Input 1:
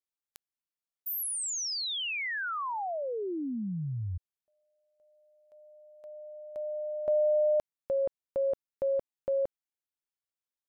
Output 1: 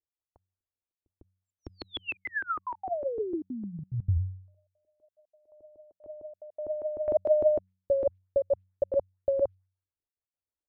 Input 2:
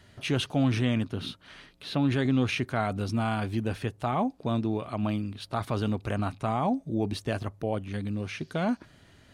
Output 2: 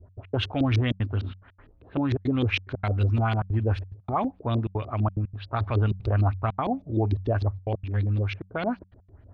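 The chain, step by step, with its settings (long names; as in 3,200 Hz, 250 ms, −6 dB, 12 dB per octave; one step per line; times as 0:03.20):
auto-filter low-pass saw up 6.6 Hz 300–4,800 Hz
low shelf with overshoot 120 Hz +7.5 dB, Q 3
low-pass that shuts in the quiet parts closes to 710 Hz, open at −20 dBFS
gate pattern "x.x.xxxxxxx.xxx" 180 BPM −60 dB
hum removal 93.8 Hz, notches 2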